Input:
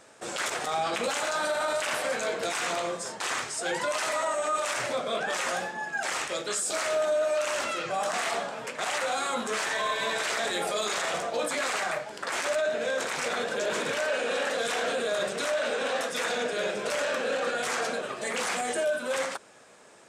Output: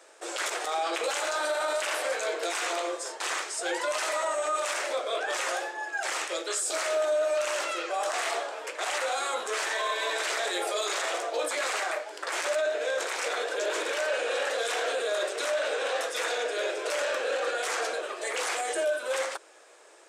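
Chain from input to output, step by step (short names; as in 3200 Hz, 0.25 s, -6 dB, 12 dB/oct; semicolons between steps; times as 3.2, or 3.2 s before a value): Chebyshev high-pass 320 Hz, order 5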